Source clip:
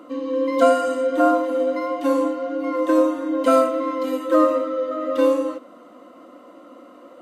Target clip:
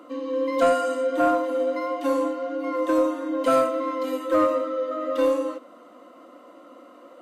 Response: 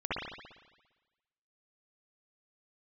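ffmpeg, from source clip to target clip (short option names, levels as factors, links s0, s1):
-af "highpass=f=290:p=1,acontrast=67,volume=0.398"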